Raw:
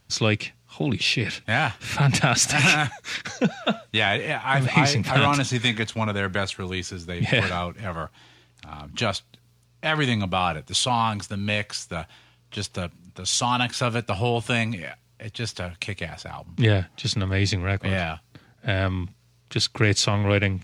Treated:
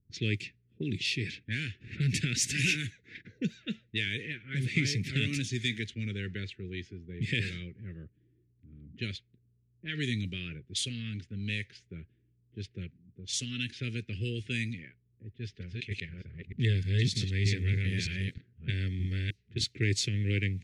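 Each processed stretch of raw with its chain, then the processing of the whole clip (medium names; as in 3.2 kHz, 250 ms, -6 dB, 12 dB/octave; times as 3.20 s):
15.29–19.64 s: chunks repeated in reverse 309 ms, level -0.5 dB + band-stop 310 Hz, Q 6.4
whole clip: elliptic band-stop 400–1900 Hz, stop band 80 dB; dynamic bell 100 Hz, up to +3 dB, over -35 dBFS, Q 3.9; level-controlled noise filter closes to 370 Hz, open at -20 dBFS; trim -8.5 dB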